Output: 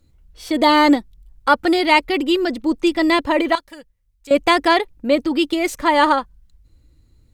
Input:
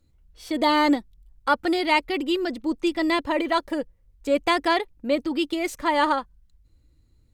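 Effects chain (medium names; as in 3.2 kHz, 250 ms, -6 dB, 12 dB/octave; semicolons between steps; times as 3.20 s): 3.55–4.31 s: amplifier tone stack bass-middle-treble 5-5-5; trim +6.5 dB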